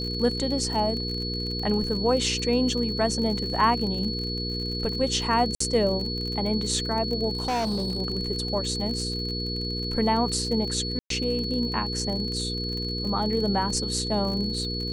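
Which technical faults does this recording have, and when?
crackle 42 per s -31 dBFS
hum 60 Hz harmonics 8 -32 dBFS
whine 4.4 kHz -31 dBFS
5.55–5.60 s: dropout 54 ms
7.33–8.00 s: clipped -23 dBFS
10.99–11.10 s: dropout 113 ms

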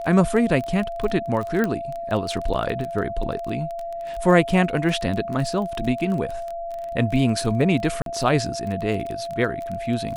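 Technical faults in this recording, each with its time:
crackle 21 per s -27 dBFS
whine 680 Hz -28 dBFS
1.64 s: pop -11 dBFS
8.02–8.06 s: dropout 42 ms

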